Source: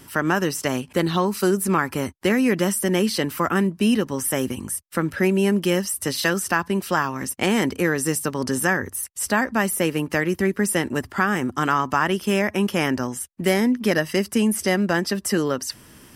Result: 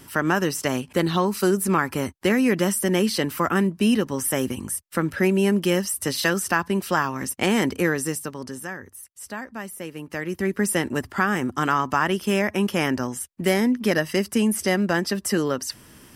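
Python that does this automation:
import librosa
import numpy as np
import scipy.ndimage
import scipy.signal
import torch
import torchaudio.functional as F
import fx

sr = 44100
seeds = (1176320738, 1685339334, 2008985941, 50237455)

y = fx.gain(x, sr, db=fx.line((7.88, -0.5), (8.65, -13.0), (9.91, -13.0), (10.58, -1.0)))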